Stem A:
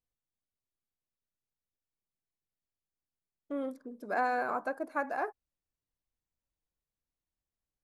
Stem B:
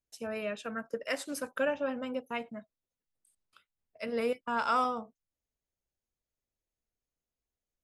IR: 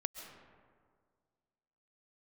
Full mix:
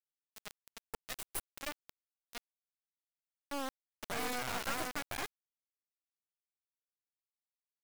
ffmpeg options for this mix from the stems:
-filter_complex "[0:a]alimiter=level_in=1dB:limit=-24dB:level=0:latency=1:release=126,volume=-1dB,crystalizer=i=5:c=0,volume=-4.5dB[a];[1:a]aecho=1:1:2.8:0.68,aexciter=amount=7.7:drive=2.2:freq=8.3k,volume=-8.5dB[b];[a][b]amix=inputs=2:normalize=0,acrusher=bits=3:dc=4:mix=0:aa=0.000001"

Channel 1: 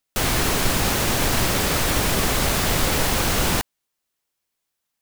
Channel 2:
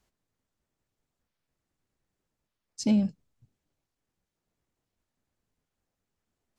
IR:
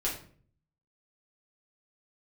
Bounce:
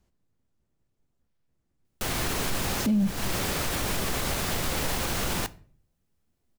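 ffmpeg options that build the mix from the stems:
-filter_complex "[0:a]adelay=1850,volume=-8dB,asplit=2[a][b];[b]volume=-20.5dB[c];[1:a]lowshelf=f=450:g=10.5,volume=-3dB,asplit=3[d][e][f];[e]volume=-19dB[g];[f]apad=whole_len=302848[h];[a][h]sidechaincompress=threshold=-35dB:ratio=4:attack=16:release=192[i];[2:a]atrim=start_sample=2205[j];[c][g]amix=inputs=2:normalize=0[k];[k][j]afir=irnorm=-1:irlink=0[l];[i][d][l]amix=inputs=3:normalize=0,alimiter=limit=-18dB:level=0:latency=1:release=31"

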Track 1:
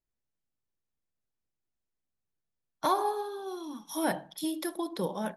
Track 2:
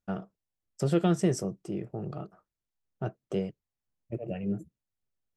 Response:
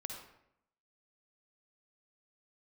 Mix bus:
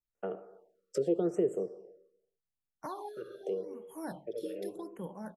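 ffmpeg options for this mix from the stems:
-filter_complex "[0:a]bass=f=250:g=6,treble=f=4k:g=0,volume=-11.5dB,asplit=2[a][b];[1:a]highpass=f=450:t=q:w=4.9,adelay=150,volume=-2dB,asplit=3[c][d][e];[c]atrim=end=1.77,asetpts=PTS-STARTPTS,afade=t=out:st=1.766:d=0.004:c=hsin[f];[d]atrim=start=1.77:end=2.97,asetpts=PTS-STARTPTS,volume=0[g];[e]atrim=start=2.97,asetpts=PTS-STARTPTS,afade=t=in:d=0.004:c=hsin[h];[f][g][h]concat=n=3:v=0:a=1,asplit=2[i][j];[j]volume=-8dB[k];[b]apad=whole_len=243284[l];[i][l]sidechaincompress=threshold=-51dB:ratio=8:attack=16:release=796[m];[2:a]atrim=start_sample=2205[n];[k][n]afir=irnorm=-1:irlink=0[o];[a][m][o]amix=inputs=3:normalize=0,highshelf=f=7.5k:g=-5,acrossover=split=330[p][q];[q]acompressor=threshold=-37dB:ratio=8[r];[p][r]amix=inputs=2:normalize=0,afftfilt=real='re*(1-between(b*sr/1024,790*pow(4800/790,0.5+0.5*sin(2*PI*0.84*pts/sr))/1.41,790*pow(4800/790,0.5+0.5*sin(2*PI*0.84*pts/sr))*1.41))':imag='im*(1-between(b*sr/1024,790*pow(4800/790,0.5+0.5*sin(2*PI*0.84*pts/sr))/1.41,790*pow(4800/790,0.5+0.5*sin(2*PI*0.84*pts/sr))*1.41))':win_size=1024:overlap=0.75"

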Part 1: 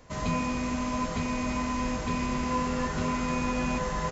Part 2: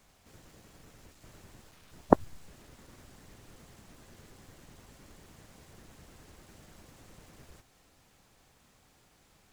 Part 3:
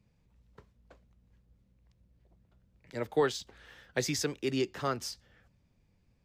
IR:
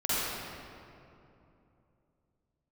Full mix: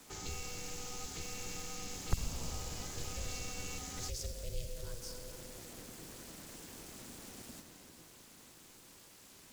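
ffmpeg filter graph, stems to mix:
-filter_complex "[0:a]volume=-7dB[a];[1:a]volume=2dB,asplit=2[b][c];[c]volume=-15dB[d];[2:a]lowshelf=f=370:t=q:w=3:g=9.5,volume=-16dB,asplit=2[e][f];[f]volume=-14dB[g];[3:a]atrim=start_sample=2205[h];[d][g]amix=inputs=2:normalize=0[i];[i][h]afir=irnorm=-1:irlink=0[j];[a][b][e][j]amix=inputs=4:normalize=0,aeval=exprs='val(0)*sin(2*PI*240*n/s)':c=same,highshelf=f=3.3k:g=11.5,acrossover=split=140|3000[k][l][m];[l]acompressor=threshold=-49dB:ratio=6[n];[k][n][m]amix=inputs=3:normalize=0"

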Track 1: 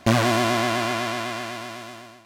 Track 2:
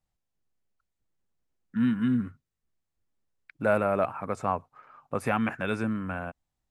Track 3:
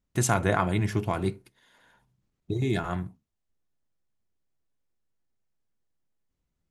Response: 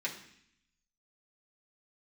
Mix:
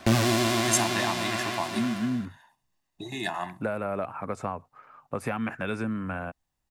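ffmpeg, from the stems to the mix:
-filter_complex "[0:a]aeval=exprs='clip(val(0),-1,0.224)':c=same,acontrast=49,volume=-6dB,asplit=2[a][b];[b]volume=-8.5dB[c];[1:a]acompressor=threshold=-26dB:ratio=6,volume=1dB[d];[2:a]highpass=450,aecho=1:1:1.1:0.9,adelay=500,volume=1.5dB[e];[3:a]atrim=start_sample=2205[f];[c][f]afir=irnorm=-1:irlink=0[g];[a][d][e][g]amix=inputs=4:normalize=0,acrossover=split=370|3000[h][i][j];[i]acompressor=threshold=-27dB:ratio=6[k];[h][k][j]amix=inputs=3:normalize=0"

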